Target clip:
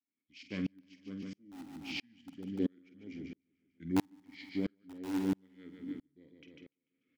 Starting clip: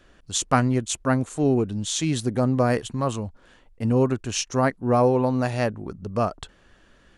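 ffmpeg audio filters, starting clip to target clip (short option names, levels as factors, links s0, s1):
-filter_complex "[0:a]highpass=95,equalizer=f=2200:t=o:w=0.29:g=7,volume=3.16,asoftclip=hard,volume=0.316,asetrate=33038,aresample=44100,atempo=1.33484,asplit=3[s0][s1][s2];[s0]bandpass=f=270:t=q:w=8,volume=1[s3];[s1]bandpass=f=2290:t=q:w=8,volume=0.501[s4];[s2]bandpass=f=3010:t=q:w=8,volume=0.355[s5];[s3][s4][s5]amix=inputs=3:normalize=0,asplit=2[s6][s7];[s7]aeval=exprs='(mod(14.1*val(0)+1,2)-1)/14.1':c=same,volume=0.447[s8];[s6][s8]amix=inputs=2:normalize=0,asplit=2[s9][s10];[s10]adelay=48,volume=0.251[s11];[s9][s11]amix=inputs=2:normalize=0,asplit=2[s12][s13];[s13]aecho=0:1:147|294|441|588|735|882:0.316|0.164|0.0855|0.0445|0.0231|0.012[s14];[s12][s14]amix=inputs=2:normalize=0,aeval=exprs='val(0)*pow(10,-39*if(lt(mod(-1.5*n/s,1),2*abs(-1.5)/1000),1-mod(-1.5*n/s,1)/(2*abs(-1.5)/1000),(mod(-1.5*n/s,1)-2*abs(-1.5)/1000)/(1-2*abs(-1.5)/1000))/20)':c=same,volume=1.19"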